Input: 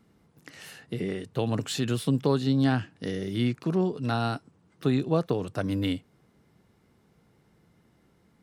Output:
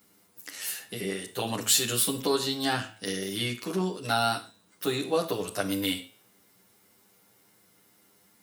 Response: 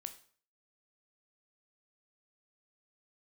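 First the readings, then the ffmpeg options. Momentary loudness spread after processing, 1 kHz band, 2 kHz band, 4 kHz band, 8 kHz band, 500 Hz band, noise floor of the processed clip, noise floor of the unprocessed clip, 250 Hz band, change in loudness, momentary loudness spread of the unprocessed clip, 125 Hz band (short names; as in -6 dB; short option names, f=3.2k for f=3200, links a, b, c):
11 LU, +3.0 dB, +4.0 dB, +8.0 dB, +15.0 dB, -0.5 dB, -63 dBFS, -65 dBFS, -5.5 dB, -0.5 dB, 11 LU, -9.5 dB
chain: -filter_complex "[0:a]aemphasis=mode=production:type=riaa,bandreject=f=109:t=h:w=4,bandreject=f=218:t=h:w=4,bandreject=f=327:t=h:w=4,bandreject=f=436:t=h:w=4,bandreject=f=545:t=h:w=4,bandreject=f=654:t=h:w=4,bandreject=f=763:t=h:w=4,bandreject=f=872:t=h:w=4,bandreject=f=981:t=h:w=4,bandreject=f=1.09k:t=h:w=4,bandreject=f=1.199k:t=h:w=4,bandreject=f=1.308k:t=h:w=4,bandreject=f=1.417k:t=h:w=4,bandreject=f=1.526k:t=h:w=4,bandreject=f=1.635k:t=h:w=4,bandreject=f=1.744k:t=h:w=4,bandreject=f=1.853k:t=h:w=4,bandreject=f=1.962k:t=h:w=4,bandreject=f=2.071k:t=h:w=4,bandreject=f=2.18k:t=h:w=4,bandreject=f=2.289k:t=h:w=4,bandreject=f=2.398k:t=h:w=4,bandreject=f=2.507k:t=h:w=4,bandreject=f=2.616k:t=h:w=4,bandreject=f=2.725k:t=h:w=4,bandreject=f=2.834k:t=h:w=4,bandreject=f=2.943k:t=h:w=4,bandreject=f=3.052k:t=h:w=4,bandreject=f=3.161k:t=h:w=4,bandreject=f=3.27k:t=h:w=4,bandreject=f=3.379k:t=h:w=4,bandreject=f=3.488k:t=h:w=4,bandreject=f=3.597k:t=h:w=4,bandreject=f=3.706k:t=h:w=4,bandreject=f=3.815k:t=h:w=4,bandreject=f=3.924k:t=h:w=4,bandreject=f=4.033k:t=h:w=4,asplit=2[a][b];[1:a]atrim=start_sample=2205,atrim=end_sample=6174,adelay=10[c];[b][c]afir=irnorm=-1:irlink=0,volume=6dB[d];[a][d]amix=inputs=2:normalize=0,volume=-2dB"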